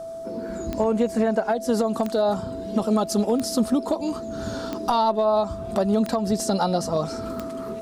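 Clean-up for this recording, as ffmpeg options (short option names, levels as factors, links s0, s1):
-af "adeclick=t=4,bandreject=f=660:w=30"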